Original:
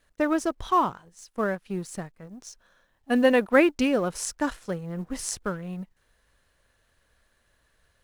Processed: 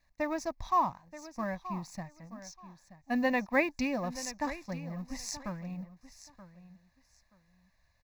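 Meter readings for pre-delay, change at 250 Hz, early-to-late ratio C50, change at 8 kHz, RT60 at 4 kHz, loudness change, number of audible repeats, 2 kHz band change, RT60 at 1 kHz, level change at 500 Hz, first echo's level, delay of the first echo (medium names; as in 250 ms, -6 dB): no reverb, -8.5 dB, no reverb, -8.0 dB, no reverb, -8.0 dB, 2, -5.5 dB, no reverb, -10.5 dB, -14.5 dB, 928 ms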